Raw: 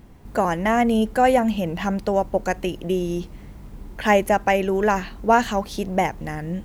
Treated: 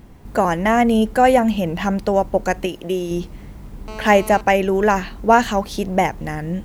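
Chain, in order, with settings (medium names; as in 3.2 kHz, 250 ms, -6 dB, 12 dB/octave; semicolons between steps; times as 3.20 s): 2.66–3.11 s: bass shelf 190 Hz -11 dB; 3.88–4.41 s: mobile phone buzz -37 dBFS; trim +3.5 dB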